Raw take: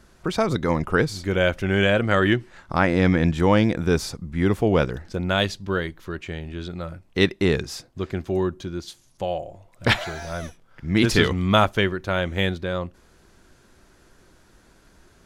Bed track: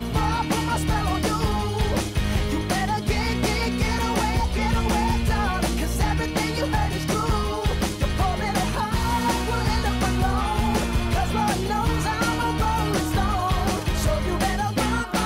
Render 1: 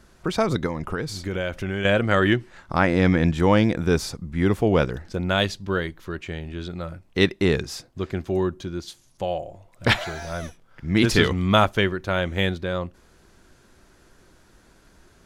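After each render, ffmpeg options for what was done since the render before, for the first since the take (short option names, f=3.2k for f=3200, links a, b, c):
-filter_complex "[0:a]asettb=1/sr,asplit=3[a][b][c];[a]atrim=end=0.664[d];[b]atrim=start=0.66:end=1.85,asetpts=PTS-STARTPTS,afade=t=in:d=0.004:c=qsin,afade=t=out:st=1.186:d=0.004:c=qsin,acompressor=threshold=-23dB:ratio=5:attack=3.2:release=140:knee=1:detection=peak[e];[c]atrim=start=1.846[f];[d][e]acrossfade=d=0.004:c1=hsin:c2=qsin[g];[g][f]acrossfade=d=0.004:c1=qsin:c2=hsin"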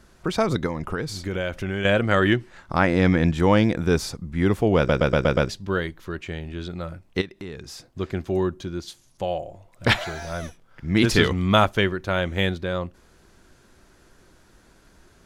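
-filter_complex "[0:a]asplit=3[a][b][c];[a]afade=t=out:st=7.2:d=0.02[d];[b]acompressor=threshold=-37dB:ratio=3:attack=3.2:release=140:knee=1:detection=peak,afade=t=in:st=7.2:d=0.02,afade=t=out:st=7.9:d=0.02[e];[c]afade=t=in:st=7.9:d=0.02[f];[d][e][f]amix=inputs=3:normalize=0,asplit=7[g][h][i][j][k][l][m];[g]atrim=end=4.892[n];[h]atrim=start=4.768:end=4.892[o];[i]atrim=start=4.768:end=4.892[p];[j]atrim=start=4.768:end=4.892[q];[k]atrim=start=4.768:end=4.892[r];[l]atrim=start=4.768:end=4.892[s];[m]atrim=start=5.488[t];[n][o]acrossfade=d=0.004:c1=hsin:c2=hsin[u];[u][p]acrossfade=d=0.004:c1=hsin:c2=hsin[v];[v][q]acrossfade=d=0.004:c1=hsin:c2=hsin[w];[w][r]acrossfade=d=0.004:c1=hsin:c2=hsin[x];[x][s]acrossfade=d=0.004:c1=hsin:c2=hsin[y];[y][t]acrossfade=d=0.004:c1=hsin:c2=hsin"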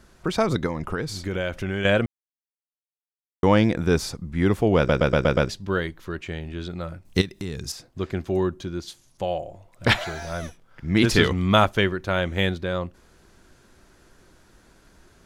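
-filter_complex "[0:a]asettb=1/sr,asplit=3[a][b][c];[a]atrim=end=7.054[d];[b]atrim=start=7.05:end=7.72,asetpts=PTS-STARTPTS,afade=t=in:d=0.004:c=qsin,afade=t=out:st=0.666:d=0.004:c=qsin,bass=f=250:g=8,treble=f=4k:g=13[e];[c]atrim=start=7.716[f];[d][e]acrossfade=d=0.004:c1=hsin:c2=qsin[g];[g][f]acrossfade=d=0.004:c1=qsin:c2=hsin,asplit=3[h][i][j];[h]atrim=end=2.06,asetpts=PTS-STARTPTS,afade=t=out:st=2.056:d=0.004:c=hsin[k];[i]atrim=start=2.06:end=3.43,asetpts=PTS-STARTPTS,volume=0[l];[j]atrim=start=3.43,asetpts=PTS-STARTPTS,afade=t=in:d=0.004:c=hsin[m];[k][l][m]concat=n=3:v=0:a=1"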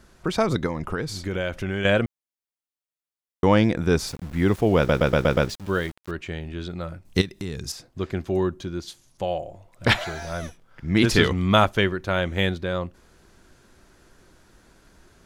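-filter_complex "[0:a]asettb=1/sr,asplit=3[a][b][c];[a]atrim=end=4.074[d];[b]atrim=start=4.07:end=6.11,asetpts=PTS-STARTPTS,afade=t=in:d=0.004:c=qsin,afade=t=out:st=2.036:d=0.004:c=qsin,aeval=exprs='val(0)*gte(abs(val(0)),0.0126)':c=same[e];[c]atrim=start=6.106[f];[d][e]acrossfade=d=0.004:c1=hsin:c2=qsin[g];[g][f]acrossfade=d=0.004:c1=qsin:c2=hsin"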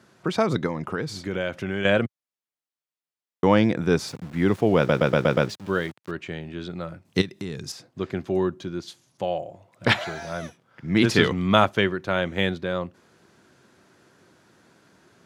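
-af "highpass=f=110:w=0.5412,highpass=f=110:w=1.3066,highshelf=f=7.7k:g=-8"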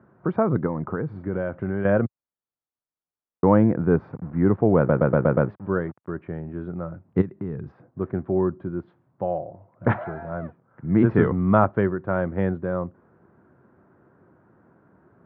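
-af "lowpass=f=1.4k:w=0.5412,lowpass=f=1.4k:w=1.3066,lowshelf=f=180:g=5.5"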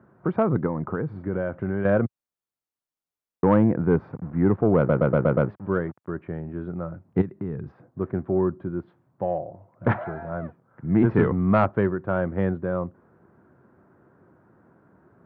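-af "asoftclip=type=tanh:threshold=-7.5dB"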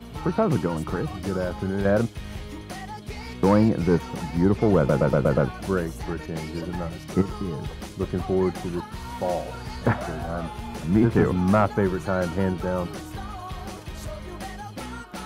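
-filter_complex "[1:a]volume=-12.5dB[a];[0:a][a]amix=inputs=2:normalize=0"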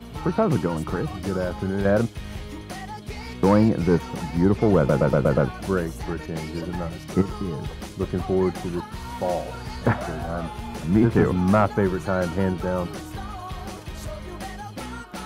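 -af "volume=1dB"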